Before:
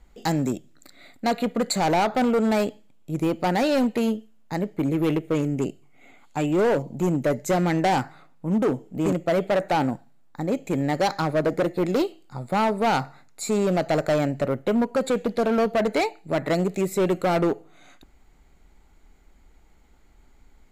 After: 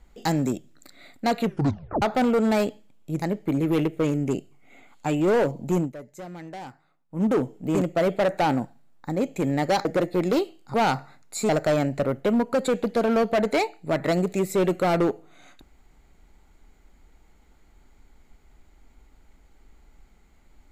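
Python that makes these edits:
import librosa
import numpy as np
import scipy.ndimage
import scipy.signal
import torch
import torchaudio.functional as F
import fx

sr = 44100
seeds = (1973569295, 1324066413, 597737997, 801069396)

y = fx.edit(x, sr, fx.tape_stop(start_s=1.4, length_s=0.62),
    fx.cut(start_s=3.22, length_s=1.31),
    fx.fade_down_up(start_s=7.1, length_s=1.44, db=-17.0, fade_s=0.14),
    fx.cut(start_s=11.16, length_s=0.32),
    fx.cut(start_s=12.37, length_s=0.43),
    fx.cut(start_s=13.55, length_s=0.36), tone=tone)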